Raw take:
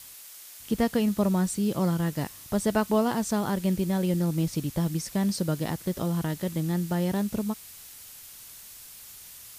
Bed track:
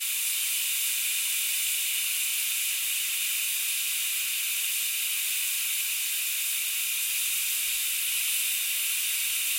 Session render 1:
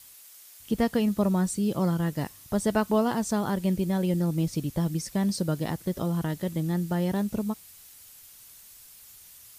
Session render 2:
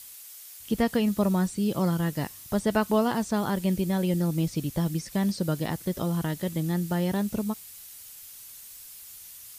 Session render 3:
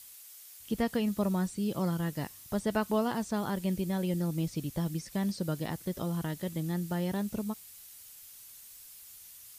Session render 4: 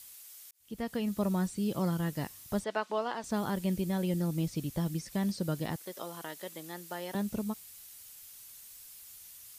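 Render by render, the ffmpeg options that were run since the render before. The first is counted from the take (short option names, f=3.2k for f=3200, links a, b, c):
-af "afftdn=nr=6:nf=-47"
-filter_complex "[0:a]acrossover=split=3400[a][b];[b]acompressor=threshold=-49dB:ratio=4:attack=1:release=60[c];[a][c]amix=inputs=2:normalize=0,highshelf=f=2.9k:g=9"
-af "volume=-5.5dB"
-filter_complex "[0:a]asettb=1/sr,asplit=3[a][b][c];[a]atrim=end=2.644[d];[b]atrim=start=2.64:end=3.24,asetpts=PTS-STARTPTS,afade=t=in:d=0.004:c=qsin,afade=t=out:st=0.596:d=0.004:c=qsin,highpass=480,lowpass=4.7k[e];[c]atrim=start=3.236[f];[d][e]acrossfade=d=0.004:c1=hsin:c2=qsin[g];[g][f]acrossfade=d=0.004:c1=qsin:c2=hsin,asettb=1/sr,asplit=3[h][i][j];[h]atrim=end=5.764[k];[i]atrim=start=5.76:end=7.15,asetpts=PTS-STARTPTS,afade=t=in:d=0.004:c=qsin,afade=t=out:st=1.386:d=0.004:c=qsin,highpass=490[l];[j]atrim=start=7.146[m];[k][l]acrossfade=d=0.004:c1=hsin:c2=qsin[n];[n][m]acrossfade=d=0.004:c1=qsin:c2=hsin,asplit=2[o][p];[o]atrim=end=0.51,asetpts=PTS-STARTPTS,afade=t=out:st=0.506:d=0.004:c=hsin[q];[p]atrim=start=0.51,asetpts=PTS-STARTPTS,afade=t=in:d=1.02:c=qsin[r];[q][r]concat=n=2:v=0:a=1"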